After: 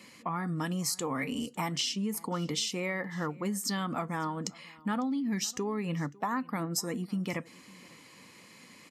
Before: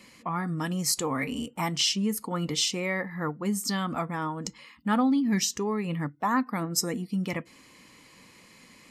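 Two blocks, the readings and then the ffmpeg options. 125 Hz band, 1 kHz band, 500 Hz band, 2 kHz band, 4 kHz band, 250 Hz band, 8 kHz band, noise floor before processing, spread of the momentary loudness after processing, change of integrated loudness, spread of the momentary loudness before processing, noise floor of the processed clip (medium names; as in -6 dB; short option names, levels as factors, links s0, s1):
-3.5 dB, -4.5 dB, -3.5 dB, -4.0 dB, -5.5 dB, -5.0 dB, -5.0 dB, -55 dBFS, 20 LU, -4.5 dB, 8 LU, -55 dBFS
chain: -filter_complex "[0:a]highpass=100,acompressor=threshold=0.0355:ratio=6,asplit=2[s0][s1];[s1]aecho=0:1:551:0.0668[s2];[s0][s2]amix=inputs=2:normalize=0"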